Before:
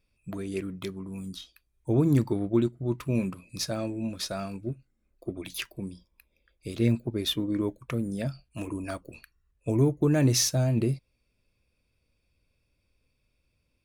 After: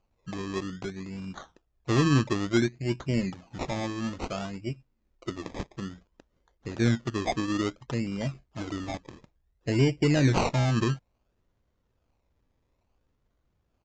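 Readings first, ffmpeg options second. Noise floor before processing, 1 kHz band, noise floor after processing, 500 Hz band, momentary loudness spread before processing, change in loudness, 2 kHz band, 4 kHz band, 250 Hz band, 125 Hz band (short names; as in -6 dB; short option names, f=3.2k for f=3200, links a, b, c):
-75 dBFS, +8.0 dB, -75 dBFS, -0.5 dB, 17 LU, -0.5 dB, +6.5 dB, -3.0 dB, -0.5 dB, 0.0 dB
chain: -af "acrusher=samples=24:mix=1:aa=0.000001:lfo=1:lforange=14.4:lforate=0.58,aresample=16000,aresample=44100,aeval=exprs='0.266*(cos(1*acos(clip(val(0)/0.266,-1,1)))-cos(1*PI/2))+0.00376*(cos(4*acos(clip(val(0)/0.266,-1,1)))-cos(4*PI/2))':c=same"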